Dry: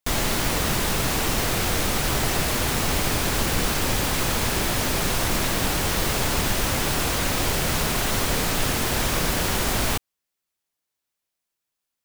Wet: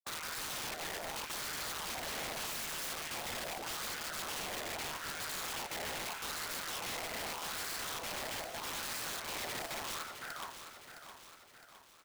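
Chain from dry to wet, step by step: random spectral dropouts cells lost 52%; 2.4–2.91 band shelf 2600 Hz +15 dB 1.2 oct; on a send: echo 0.513 s -9 dB; on the sum: ring modulator 78 Hz; low shelf 170 Hz -6.5 dB; early reflections 12 ms -4.5 dB, 52 ms -5.5 dB; wah 0.81 Hz 640–1500 Hz, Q 5.9; wrapped overs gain 41 dB; lo-fi delay 0.662 s, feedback 55%, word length 12-bit, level -9.5 dB; gain +5.5 dB

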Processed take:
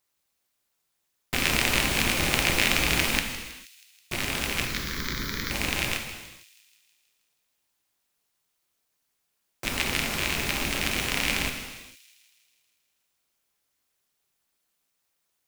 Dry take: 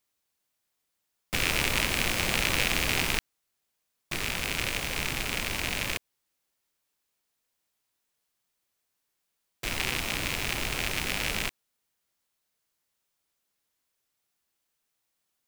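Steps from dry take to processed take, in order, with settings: AM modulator 240 Hz, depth 90%; 4.65–5.51 fixed phaser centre 2700 Hz, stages 6; on a send: thin delay 0.16 s, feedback 61%, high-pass 4000 Hz, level -13 dB; on the sum: non-linear reverb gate 0.48 s falling, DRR 4 dB; gain +5.5 dB

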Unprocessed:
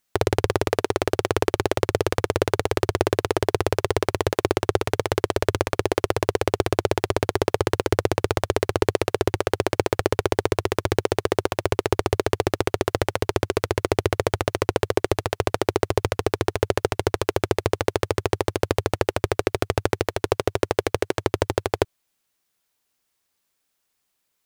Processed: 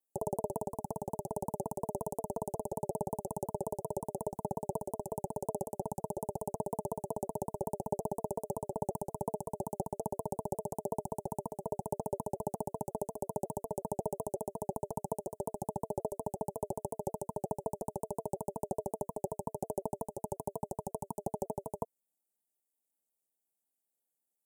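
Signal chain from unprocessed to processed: elliptic band-stop 310–8300 Hz, stop band 40 dB; ring modulator 520 Hz; shaped vibrato saw down 5.5 Hz, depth 160 cents; gain -6 dB

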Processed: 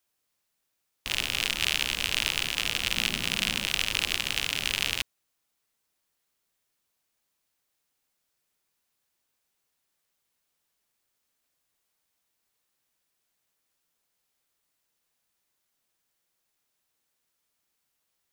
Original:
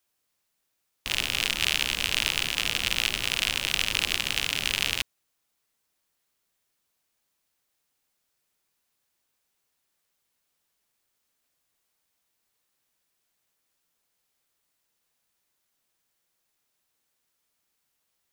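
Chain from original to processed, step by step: 2.96–3.65 bell 200 Hz +12.5 dB 0.77 oct; gain -1.5 dB

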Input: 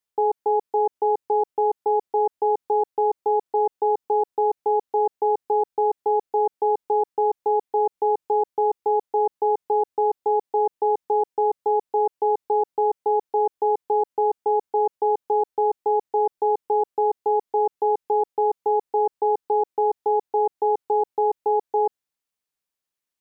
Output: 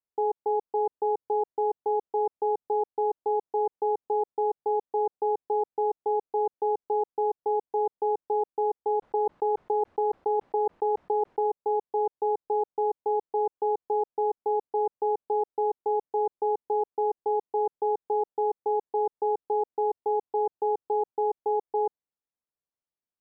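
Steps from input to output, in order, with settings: LPF 1000 Hz 12 dB/oct; 9.02–11.47 fast leveller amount 100%; gain -4.5 dB

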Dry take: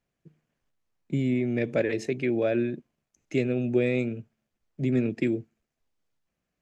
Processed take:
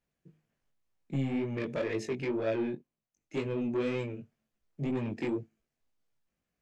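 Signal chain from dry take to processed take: soft clip -23.5 dBFS, distortion -12 dB; chorus 2 Hz, delay 18 ms, depth 4.1 ms; 2.75–3.46 upward expander 1.5:1, over -47 dBFS

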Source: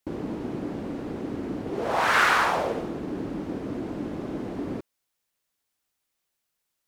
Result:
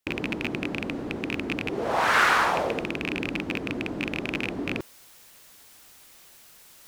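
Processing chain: rattling part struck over -32 dBFS, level -14 dBFS; reverse; upward compressor, threshold -29 dBFS; reverse

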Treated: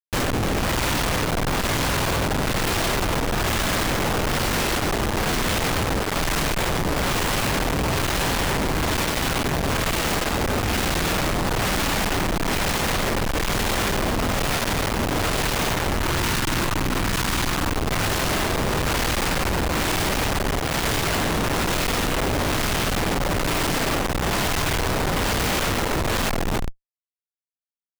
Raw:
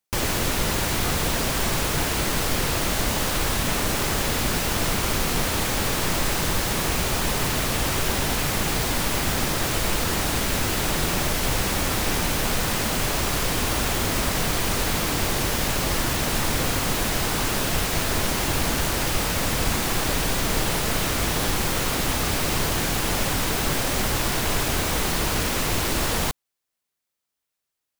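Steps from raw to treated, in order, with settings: spectral delete 15.66–17.74, 390–830 Hz; spring tank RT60 1.2 s, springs 49 ms, chirp 75 ms, DRR 3.5 dB; tremolo 1.1 Hz, depth 69%; on a send: echo 0.284 s -6.5 dB; on the sum: Schmitt trigger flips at -28 dBFS; gain +2.5 dB

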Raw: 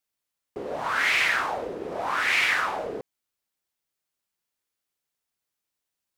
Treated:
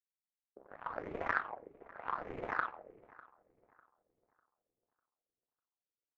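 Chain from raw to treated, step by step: reverb removal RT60 0.54 s; power-law curve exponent 3; LFO low-pass sine 1.6 Hz 390–1600 Hz; darkening echo 0.599 s, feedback 37%, low-pass 1800 Hz, level -20 dB; on a send at -21.5 dB: reverb, pre-delay 3 ms; on the sum: gain +6 dB

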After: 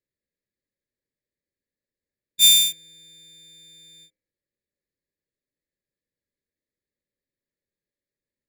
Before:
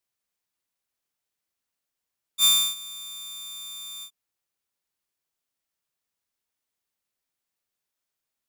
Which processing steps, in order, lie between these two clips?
Wiener smoothing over 15 samples; brick-wall FIR band-stop 620–1600 Hz; de-hum 104 Hz, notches 24; gain +5.5 dB

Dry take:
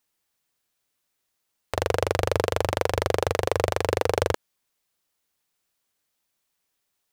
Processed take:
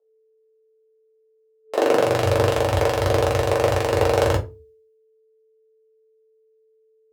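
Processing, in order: whine 440 Hz -44 dBFS; shoebox room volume 120 m³, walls furnished, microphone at 1.5 m; high-pass sweep 600 Hz -> 69 Hz, 1.62–2.32; three-band expander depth 100%

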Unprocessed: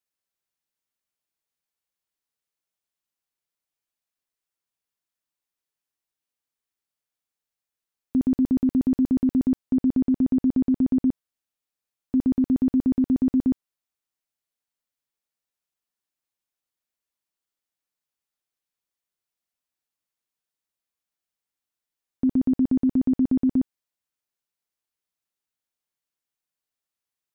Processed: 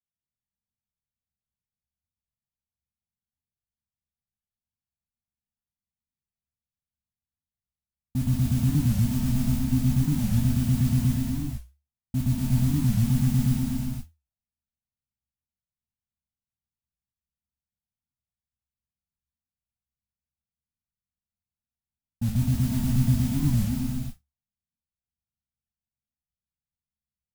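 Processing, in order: octaver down 1 oct, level -2 dB; LPF 1000 Hz; low-pass opened by the level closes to 340 Hz; Chebyshev band-stop 230–740 Hz, order 3; bell 71 Hz +12 dB 0.3 oct; limiter -20.5 dBFS, peak gain reduction 7.5 dB; modulation noise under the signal 18 dB; non-linear reverb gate 0.5 s flat, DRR -4 dB; record warp 45 rpm, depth 250 cents

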